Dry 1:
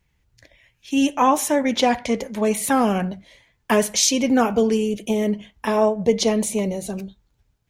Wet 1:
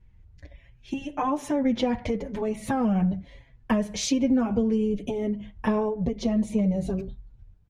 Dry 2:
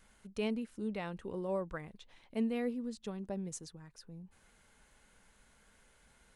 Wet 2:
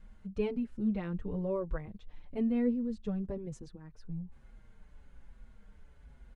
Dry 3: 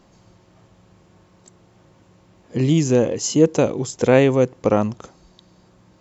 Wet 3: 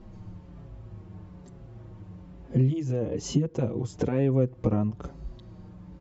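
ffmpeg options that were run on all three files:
-filter_complex "[0:a]aemphasis=mode=reproduction:type=riaa,acompressor=threshold=0.1:ratio=12,asplit=2[s0][s1];[s1]adelay=5.8,afreqshift=-1.1[s2];[s0][s2]amix=inputs=2:normalize=1,volume=1.19"

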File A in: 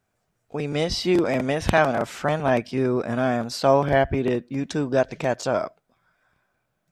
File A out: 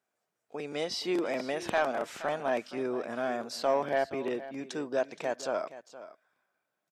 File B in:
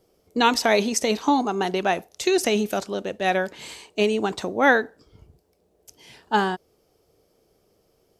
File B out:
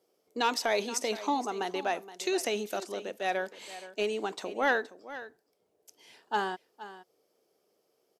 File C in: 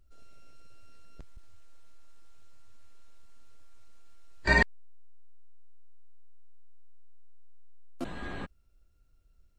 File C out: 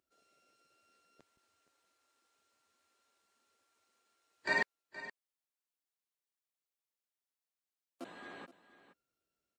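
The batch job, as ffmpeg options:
-filter_complex "[0:a]highpass=310,asoftclip=type=tanh:threshold=0.376,asplit=2[s0][s1];[s1]aecho=0:1:471:0.178[s2];[s0][s2]amix=inputs=2:normalize=0,volume=0.422"

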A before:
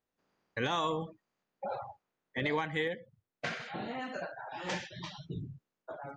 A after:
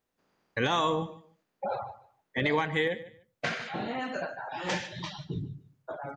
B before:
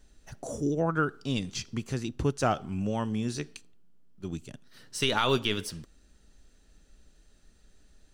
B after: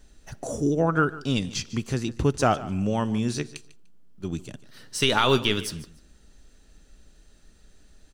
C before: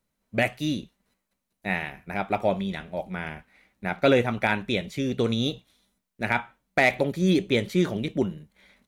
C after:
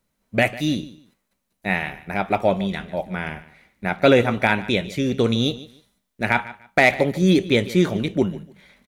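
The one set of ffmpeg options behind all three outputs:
-af "aecho=1:1:148|296:0.133|0.0293,volume=1.78"

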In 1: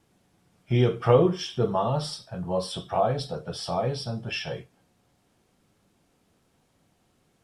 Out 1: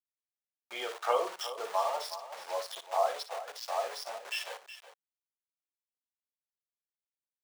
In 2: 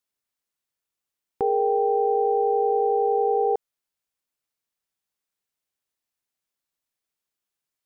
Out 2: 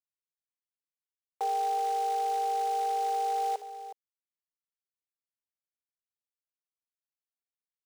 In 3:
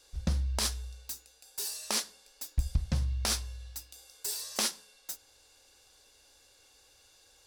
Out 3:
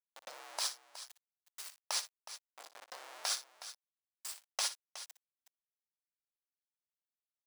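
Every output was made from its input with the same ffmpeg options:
-af "afftdn=nr=22:nf=-39,aeval=exprs='val(0)*gte(abs(val(0)),0.0224)':c=same,highpass=f=640:w=0.5412,highpass=f=640:w=1.3066,equalizer=f=14000:t=o:w=0.39:g=-7,aecho=1:1:59|367:0.211|0.224,volume=0.75"

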